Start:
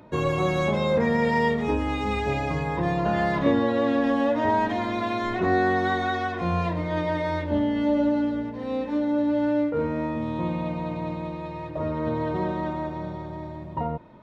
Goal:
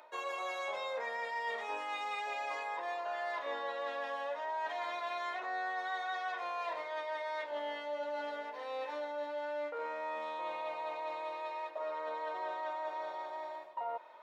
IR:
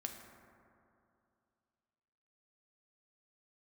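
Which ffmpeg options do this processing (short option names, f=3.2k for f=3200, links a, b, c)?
-af "highpass=f=620:w=0.5412,highpass=f=620:w=1.3066,areverse,acompressor=threshold=-36dB:ratio=6,areverse"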